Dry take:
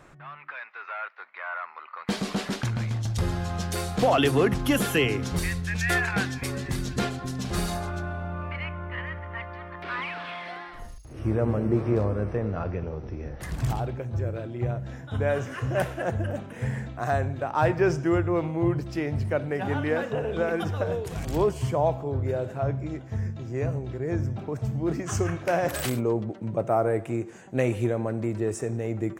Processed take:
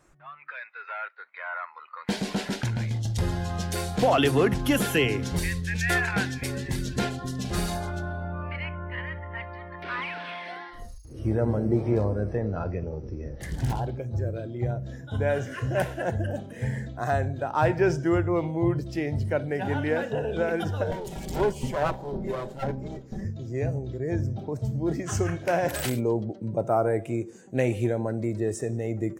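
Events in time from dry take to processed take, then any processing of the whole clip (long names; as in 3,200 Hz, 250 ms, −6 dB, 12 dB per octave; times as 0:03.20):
0:13.37–0:13.98: highs frequency-modulated by the lows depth 0.59 ms
0:20.91–0:23.25: lower of the sound and its delayed copy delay 5.2 ms
whole clip: noise reduction from a noise print of the clip's start 11 dB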